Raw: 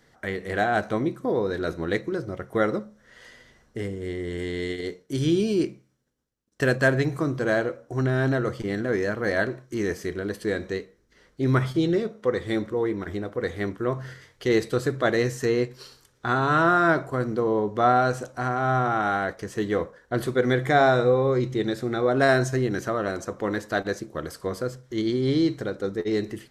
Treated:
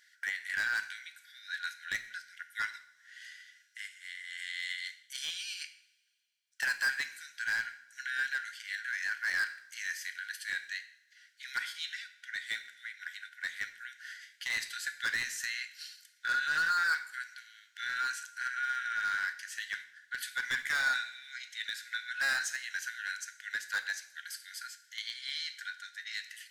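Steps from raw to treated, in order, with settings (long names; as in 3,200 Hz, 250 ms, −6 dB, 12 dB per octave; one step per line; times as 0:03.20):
linear-phase brick-wall high-pass 1,400 Hz
hard clipping −27 dBFS, distortion −9 dB
coupled-rooms reverb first 0.63 s, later 2.2 s, from −21 dB, DRR 9.5 dB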